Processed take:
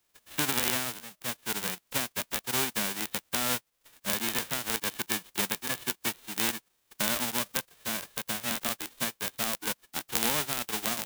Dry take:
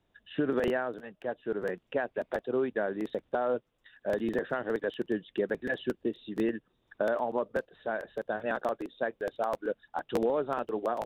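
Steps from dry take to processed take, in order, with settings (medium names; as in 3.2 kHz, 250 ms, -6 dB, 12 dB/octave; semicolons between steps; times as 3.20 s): formants flattened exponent 0.1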